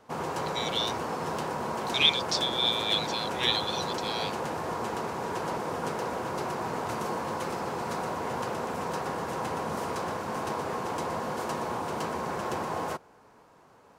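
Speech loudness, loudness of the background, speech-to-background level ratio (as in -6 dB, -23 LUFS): -28.0 LUFS, -32.5 LUFS, 4.5 dB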